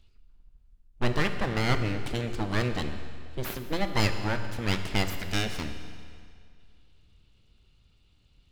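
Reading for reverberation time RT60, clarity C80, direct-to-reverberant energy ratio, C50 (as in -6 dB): 2.2 s, 9.0 dB, 7.0 dB, 8.0 dB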